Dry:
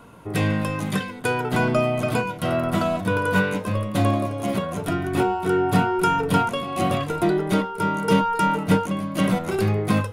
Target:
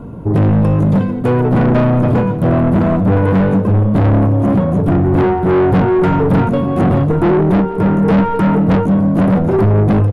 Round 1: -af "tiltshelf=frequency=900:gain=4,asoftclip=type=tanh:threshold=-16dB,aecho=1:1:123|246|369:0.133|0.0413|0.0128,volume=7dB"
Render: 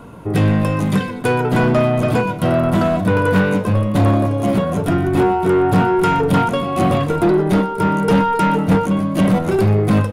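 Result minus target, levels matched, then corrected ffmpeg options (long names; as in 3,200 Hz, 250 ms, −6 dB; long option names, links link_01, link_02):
echo 50 ms early; 1,000 Hz band +4.5 dB
-af "tiltshelf=frequency=900:gain=15,asoftclip=type=tanh:threshold=-16dB,aecho=1:1:173|346|519:0.133|0.0413|0.0128,volume=7dB"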